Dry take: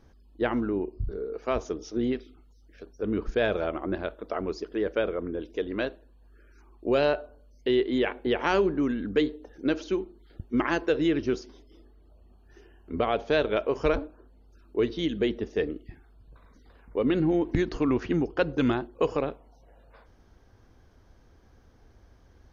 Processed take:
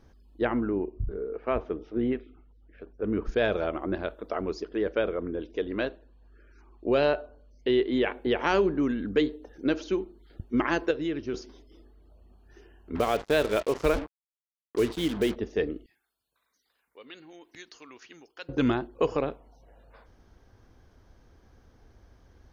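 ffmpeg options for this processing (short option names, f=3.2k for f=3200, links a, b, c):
-filter_complex "[0:a]asettb=1/sr,asplit=3[a][b][c];[a]atrim=end=0.454[d];[b]atrim=start=0.45:end=3.25,asetpts=PTS-STARTPTS,afade=t=in:d=0.004:c=qsin,afade=t=out:st=2.796:d=0.004:c=qsin,lowpass=f=2.7k:w=0.5412,lowpass=f=2.7k:w=1.3066[e];[c]atrim=start=3.246[f];[d][e]acrossfade=d=0.004:c1=hsin:c2=qsin[g];[g][f]acrossfade=d=0.004:c1=qsin:c2=hsin,asettb=1/sr,asplit=3[h][i][j];[h]atrim=end=4.634[k];[i]atrim=start=4.63:end=8.11,asetpts=PTS-STARTPTS,afade=t=in:d=0.004:c=qsin,afade=t=out:st=3.476:d=0.004:c=qsin,lowpass=5.5k[l];[j]atrim=start=8.106[m];[k][l]acrossfade=d=0.004:c1=hsin:c2=qsin[n];[n][m]acrossfade=d=0.004:c1=qsin:c2=hsin,asettb=1/sr,asplit=3[o][p][q];[o]atrim=end=12.954[r];[p]atrim=start=12.95:end=15.36,asetpts=PTS-STARTPTS,afade=t=in:d=0.004:c=qsin,afade=t=out:st=2.406:d=0.004:c=qsin,acrusher=bits=5:mix=0:aa=0.5[s];[q]atrim=start=15.356[t];[r][s]acrossfade=d=0.004:c1=hsin:c2=qsin[u];[u][t]acrossfade=d=0.004:c1=qsin:c2=hsin,asettb=1/sr,asplit=3[v][w][x];[v]atrim=end=15.864[y];[w]atrim=start=15.86:end=18.49,asetpts=PTS-STARTPTS,afade=t=in:d=0.004:c=qsin,afade=t=out:st=2.626:d=0.004:c=qsin,aderivative[z];[x]atrim=start=18.486[aa];[y][z]acrossfade=d=0.004:c1=hsin:c2=qsin[ab];[ab][aa]acrossfade=d=0.004:c1=qsin:c2=hsin,asplit=3[ac][ad][ae];[ac]atrim=end=10.912[af];[ad]atrim=start=10.908:end=11.342,asetpts=PTS-STARTPTS,volume=-6dB[ag];[ae]atrim=start=11.338[ah];[af][ag]acrossfade=d=0.004:c1=hsin:c2=hsin[ai];[ai][ah]acrossfade=d=0.004:c1=hsin:c2=hsin"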